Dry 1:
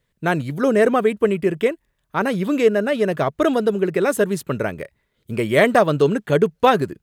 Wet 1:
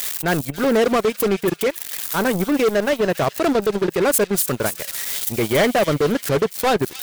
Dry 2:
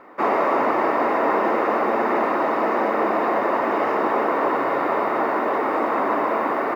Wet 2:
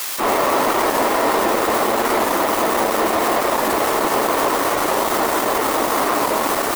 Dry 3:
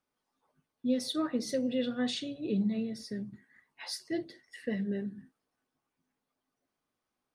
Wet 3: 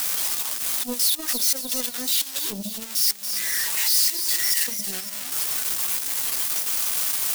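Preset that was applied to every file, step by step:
spike at every zero crossing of −17 dBFS
gate on every frequency bin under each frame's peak −30 dB strong
gain into a clipping stage and back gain 17 dB
transient designer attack −2 dB, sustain −8 dB
power curve on the samples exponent 2
delay with a high-pass on its return 279 ms, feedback 50%, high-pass 3,300 Hz, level −7 dB
wow of a warped record 45 rpm, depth 100 cents
normalise the peak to −9 dBFS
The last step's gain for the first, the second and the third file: +4.5, +5.5, +4.5 decibels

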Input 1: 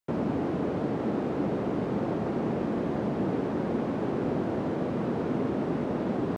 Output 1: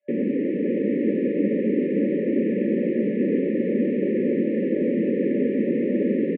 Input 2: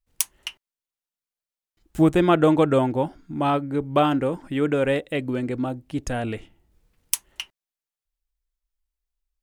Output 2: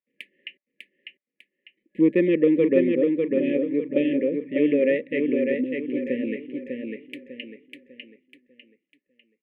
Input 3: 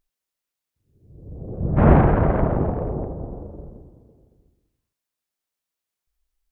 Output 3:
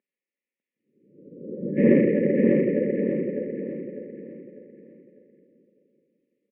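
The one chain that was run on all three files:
brick-wall band-stop 590–1,700 Hz
elliptic band-pass filter 210–2,400 Hz, stop band 40 dB
harmonic generator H 5 −36 dB, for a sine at −5.5 dBFS
on a send: repeating echo 599 ms, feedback 36%, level −4 dB
on the sum: loudness normalisation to −23 LKFS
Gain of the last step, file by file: +6.0, +0.5, +1.5 decibels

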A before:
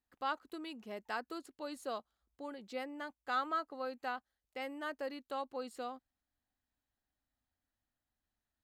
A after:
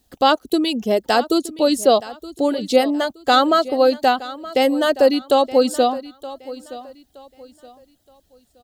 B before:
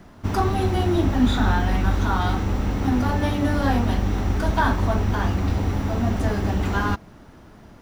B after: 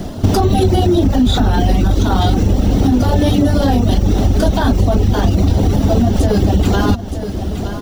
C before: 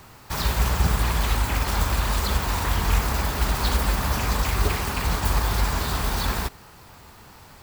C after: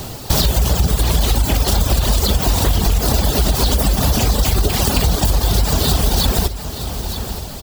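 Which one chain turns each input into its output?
reverb reduction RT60 0.76 s
brickwall limiter −18.5 dBFS
flat-topped bell 1,500 Hz −10.5 dB
repeating echo 921 ms, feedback 30%, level −17 dB
downward compressor 6 to 1, threshold −32 dBFS
normalise the peak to −2 dBFS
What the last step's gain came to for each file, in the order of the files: +27.5, +22.5, +20.5 decibels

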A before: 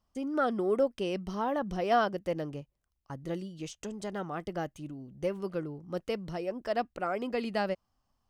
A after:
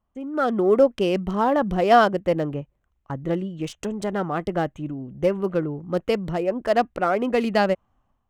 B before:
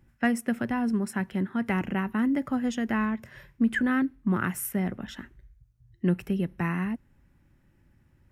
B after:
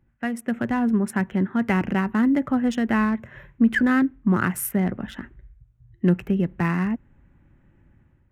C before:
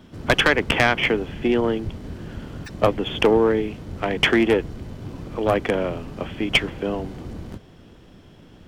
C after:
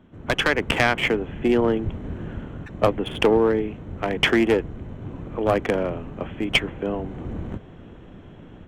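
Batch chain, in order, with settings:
adaptive Wiener filter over 9 samples
automatic gain control gain up to 10 dB
loudness normalisation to −23 LKFS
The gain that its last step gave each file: +1.0, −4.0, −5.5 decibels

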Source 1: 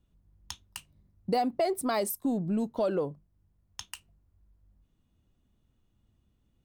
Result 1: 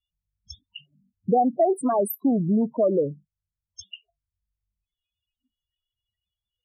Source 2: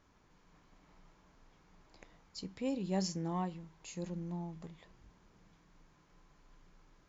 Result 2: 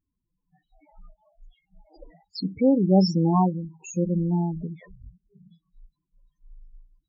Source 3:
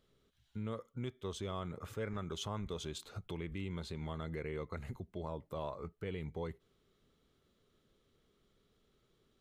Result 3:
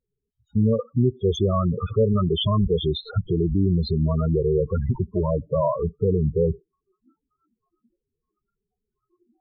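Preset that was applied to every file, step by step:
noise reduction from a noise print of the clip's start 28 dB
spectral peaks only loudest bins 8
loudness normalisation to −23 LKFS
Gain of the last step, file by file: +8.0, +17.0, +21.5 decibels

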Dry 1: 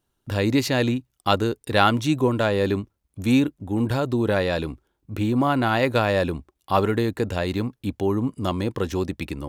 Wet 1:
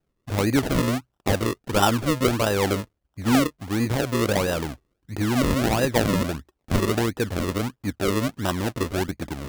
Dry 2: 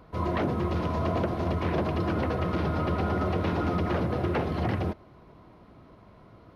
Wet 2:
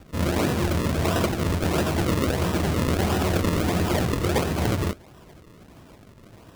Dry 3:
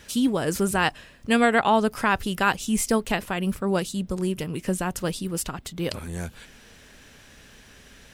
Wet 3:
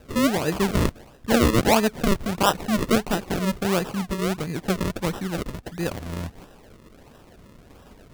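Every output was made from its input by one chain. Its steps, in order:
sample-and-hold swept by an LFO 39×, swing 100% 1.5 Hz
loudness normalisation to −24 LKFS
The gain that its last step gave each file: −0.5, +4.0, +1.0 decibels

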